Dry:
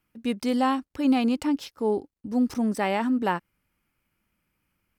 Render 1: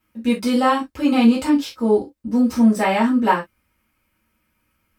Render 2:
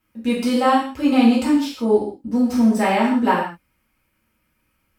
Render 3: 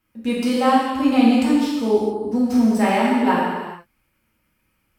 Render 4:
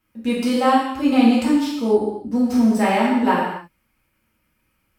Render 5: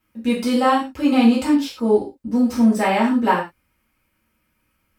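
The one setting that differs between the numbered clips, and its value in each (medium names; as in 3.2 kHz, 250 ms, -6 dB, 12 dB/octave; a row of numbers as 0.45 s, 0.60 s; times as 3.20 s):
gated-style reverb, gate: 90 ms, 200 ms, 480 ms, 310 ms, 140 ms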